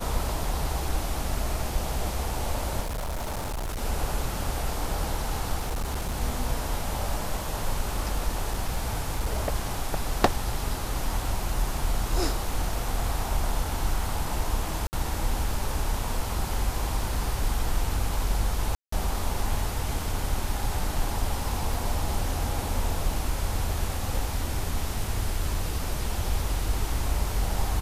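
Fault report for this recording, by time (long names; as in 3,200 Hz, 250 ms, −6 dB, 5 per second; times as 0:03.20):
0:02.80–0:03.82: clipping −28 dBFS
0:05.60–0:06.17: clipping −25 dBFS
0:08.28–0:09.53: clipping −21 dBFS
0:14.87–0:14.93: drop-out 59 ms
0:18.75–0:18.92: drop-out 174 ms
0:21.74: drop-out 2.6 ms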